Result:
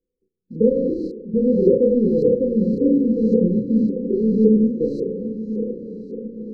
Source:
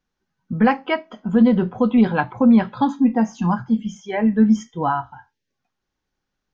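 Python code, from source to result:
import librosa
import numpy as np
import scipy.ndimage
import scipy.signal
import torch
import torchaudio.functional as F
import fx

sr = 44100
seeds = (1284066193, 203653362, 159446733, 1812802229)

p1 = fx.spec_trails(x, sr, decay_s=1.04)
p2 = fx.sample_hold(p1, sr, seeds[0], rate_hz=2600.0, jitter_pct=20)
p3 = p1 + (p2 * librosa.db_to_amplitude(-5.0))
p4 = fx.graphic_eq_10(p3, sr, hz=(125, 500, 1000, 2000), db=(-7, 7, -5, 10))
p5 = fx.level_steps(p4, sr, step_db=17)
p6 = 10.0 ** (-13.5 / 20.0) * np.tanh(p5 / 10.0 ** (-13.5 / 20.0))
p7 = fx.doubler(p6, sr, ms=32.0, db=-3.0)
p8 = fx.echo_diffused(p7, sr, ms=917, feedback_pct=57, wet_db=-11.0)
p9 = fx.filter_lfo_lowpass(p8, sr, shape='saw_up', hz=1.8, low_hz=420.0, high_hz=2200.0, q=3.3)
p10 = fx.brickwall_bandstop(p9, sr, low_hz=540.0, high_hz=3900.0)
y = fx.peak_eq(p10, sr, hz=2600.0, db=-13.0, octaves=0.47)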